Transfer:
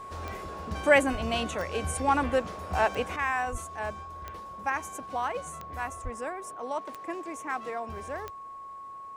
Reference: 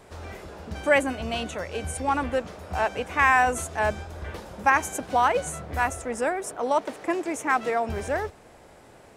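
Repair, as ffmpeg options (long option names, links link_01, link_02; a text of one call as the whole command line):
ffmpeg -i in.wav -filter_complex "[0:a]adeclick=threshold=4,bandreject=frequency=1100:width=30,asplit=3[link_01][link_02][link_03];[link_01]afade=type=out:start_time=1.11:duration=0.02[link_04];[link_02]highpass=frequency=140:width=0.5412,highpass=frequency=140:width=1.3066,afade=type=in:start_time=1.11:duration=0.02,afade=type=out:start_time=1.23:duration=0.02[link_05];[link_03]afade=type=in:start_time=1.23:duration=0.02[link_06];[link_04][link_05][link_06]amix=inputs=3:normalize=0,asplit=3[link_07][link_08][link_09];[link_07]afade=type=out:start_time=3.51:duration=0.02[link_10];[link_08]highpass=frequency=140:width=0.5412,highpass=frequency=140:width=1.3066,afade=type=in:start_time=3.51:duration=0.02,afade=type=out:start_time=3.63:duration=0.02[link_11];[link_09]afade=type=in:start_time=3.63:duration=0.02[link_12];[link_10][link_11][link_12]amix=inputs=3:normalize=0,asplit=3[link_13][link_14][link_15];[link_13]afade=type=out:start_time=6.03:duration=0.02[link_16];[link_14]highpass=frequency=140:width=0.5412,highpass=frequency=140:width=1.3066,afade=type=in:start_time=6.03:duration=0.02,afade=type=out:start_time=6.15:duration=0.02[link_17];[link_15]afade=type=in:start_time=6.15:duration=0.02[link_18];[link_16][link_17][link_18]amix=inputs=3:normalize=0,asetnsamples=nb_out_samples=441:pad=0,asendcmd='3.16 volume volume 10dB',volume=0dB" out.wav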